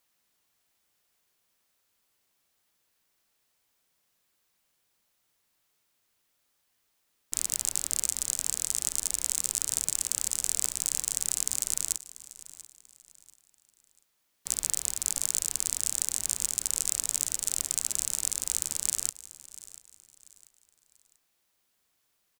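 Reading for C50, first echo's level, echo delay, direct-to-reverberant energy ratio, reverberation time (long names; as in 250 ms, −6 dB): no reverb audible, −17.5 dB, 689 ms, no reverb audible, no reverb audible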